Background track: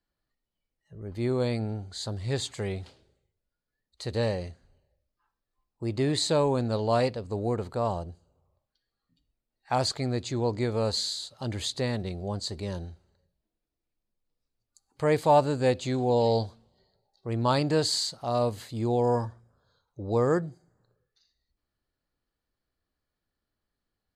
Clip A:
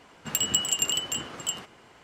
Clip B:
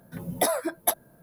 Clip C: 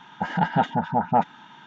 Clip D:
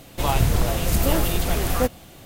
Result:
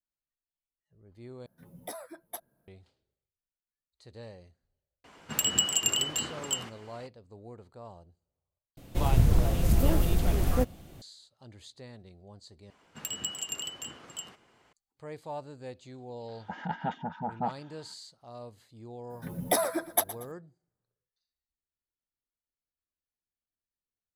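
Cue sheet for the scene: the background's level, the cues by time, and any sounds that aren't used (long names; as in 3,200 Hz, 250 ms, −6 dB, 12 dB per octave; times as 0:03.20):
background track −18.5 dB
0:01.46: overwrite with B −17 dB
0:05.04: mix in A −1 dB
0:08.77: overwrite with D −11.5 dB + low-shelf EQ 490 Hz +10 dB
0:12.70: overwrite with A −10 dB
0:16.28: mix in C −12 dB
0:19.10: mix in B −2 dB + repeating echo 117 ms, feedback 36%, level −15.5 dB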